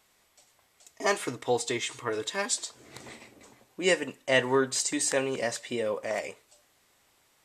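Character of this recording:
background noise floor −67 dBFS
spectral slope −2.5 dB per octave

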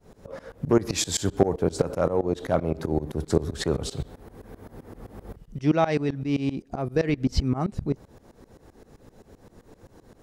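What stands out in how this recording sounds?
tremolo saw up 7.7 Hz, depth 95%

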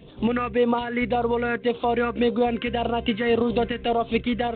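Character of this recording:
phaser sweep stages 4, 1.8 Hz, lowest notch 790–1,900 Hz
tremolo saw up 3.8 Hz, depth 35%
G.726

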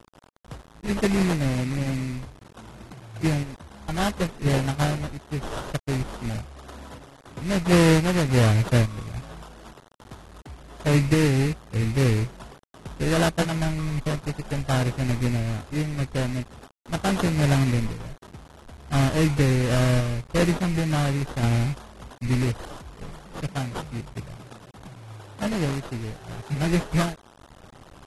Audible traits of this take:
aliases and images of a low sample rate 2,300 Hz, jitter 20%
sample-and-hold tremolo
a quantiser's noise floor 8 bits, dither none
AAC

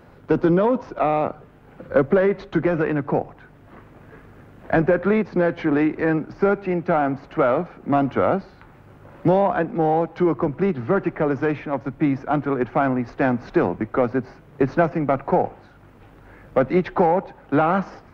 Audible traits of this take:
background noise floor −49 dBFS
spectral slope −4.0 dB per octave

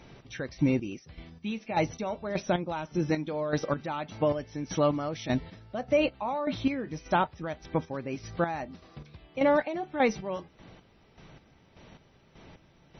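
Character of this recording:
chopped level 1.7 Hz, depth 65%, duty 35%
MP3

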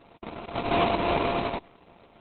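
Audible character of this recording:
a buzz of ramps at a fixed pitch in blocks of 64 samples
tremolo saw up 3.4 Hz, depth 30%
aliases and images of a low sample rate 1,700 Hz, jitter 20%
Opus

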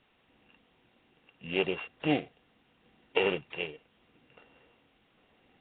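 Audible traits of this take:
a buzz of ramps at a fixed pitch in blocks of 16 samples
sample-and-hold tremolo
a quantiser's noise floor 10 bits, dither triangular
Nellymoser

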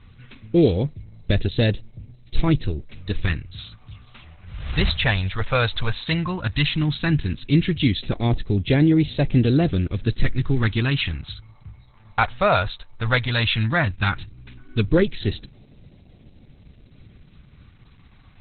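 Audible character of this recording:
phaser sweep stages 2, 0.14 Hz, lowest notch 310–1,100 Hz
a quantiser's noise floor 12 bits, dither none
Opus

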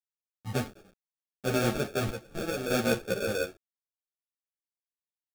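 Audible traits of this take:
a quantiser's noise floor 8 bits, dither none
chopped level 0.74 Hz, depth 60%, duty 55%
aliases and images of a low sample rate 1,000 Hz, jitter 0%
a shimmering, thickened sound

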